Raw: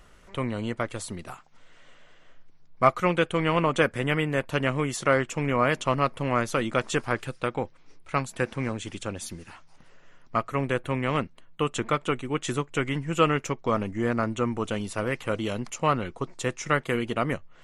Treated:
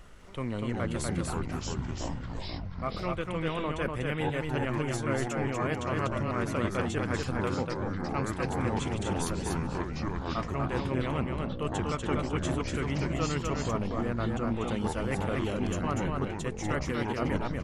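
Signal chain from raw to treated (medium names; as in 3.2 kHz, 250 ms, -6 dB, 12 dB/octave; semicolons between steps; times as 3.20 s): bass shelf 370 Hz +4 dB; reverse; compression 6:1, threshold -30 dBFS, peak gain reduction 16.5 dB; reverse; delay 243 ms -3.5 dB; ever faster or slower copies 205 ms, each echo -6 st, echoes 3; endings held to a fixed fall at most 230 dB/s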